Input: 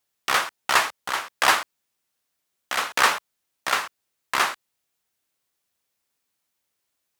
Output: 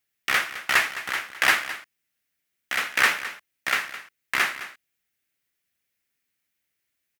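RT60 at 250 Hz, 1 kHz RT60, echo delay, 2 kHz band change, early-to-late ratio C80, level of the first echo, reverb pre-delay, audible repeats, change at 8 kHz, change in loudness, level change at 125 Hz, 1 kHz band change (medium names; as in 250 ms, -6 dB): no reverb, no reverb, 212 ms, +2.0 dB, no reverb, -14.0 dB, no reverb, 1, -3.5 dB, -0.5 dB, no reading, -6.0 dB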